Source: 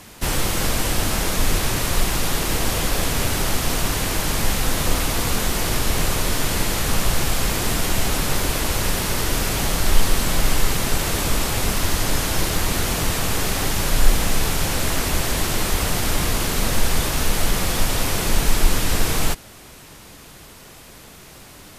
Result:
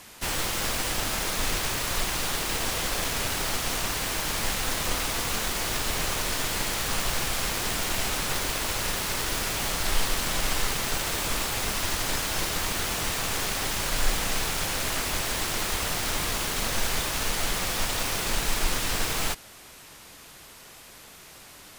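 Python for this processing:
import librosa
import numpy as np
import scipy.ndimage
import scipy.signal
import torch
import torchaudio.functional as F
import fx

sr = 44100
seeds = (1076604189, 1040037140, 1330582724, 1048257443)

y = fx.self_delay(x, sr, depth_ms=0.2)
y = fx.low_shelf(y, sr, hz=480.0, db=-9.0)
y = y * 10.0 ** (-2.5 / 20.0)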